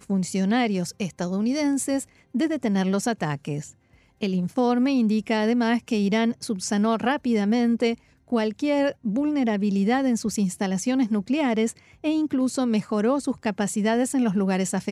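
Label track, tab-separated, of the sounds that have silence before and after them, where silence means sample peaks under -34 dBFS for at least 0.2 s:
2.350000	3.670000	sound
4.220000	7.940000	sound
8.320000	11.710000	sound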